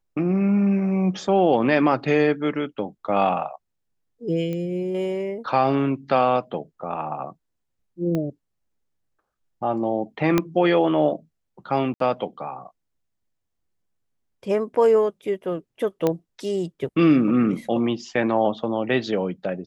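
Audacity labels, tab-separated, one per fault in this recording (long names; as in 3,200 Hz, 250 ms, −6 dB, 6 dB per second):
4.530000	4.530000	click −19 dBFS
8.150000	8.150000	click −15 dBFS
10.380000	10.380000	click −6 dBFS
11.940000	12.000000	drop-out 63 ms
16.070000	16.070000	click −9 dBFS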